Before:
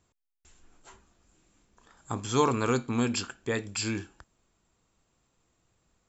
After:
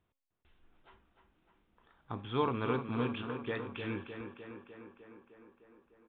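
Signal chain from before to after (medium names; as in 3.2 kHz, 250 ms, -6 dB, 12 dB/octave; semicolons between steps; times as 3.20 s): de-hum 270.4 Hz, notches 29; on a send: tape echo 303 ms, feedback 74%, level -6.5 dB, low-pass 3.1 kHz; on the sum: resampled via 8 kHz; trim -7 dB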